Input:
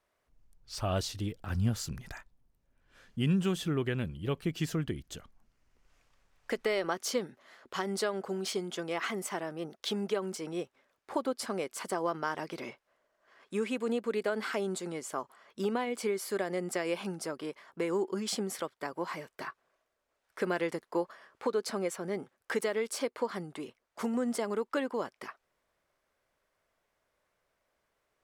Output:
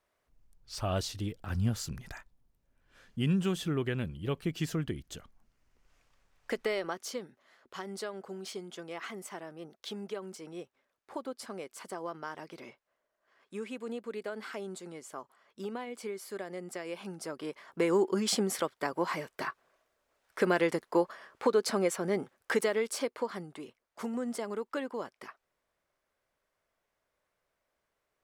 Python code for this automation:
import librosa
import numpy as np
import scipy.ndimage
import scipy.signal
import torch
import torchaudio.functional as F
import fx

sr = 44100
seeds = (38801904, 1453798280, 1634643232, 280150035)

y = fx.gain(x, sr, db=fx.line((6.61, -0.5), (7.18, -7.0), (16.91, -7.0), (17.83, 4.5), (22.36, 4.5), (23.59, -3.5)))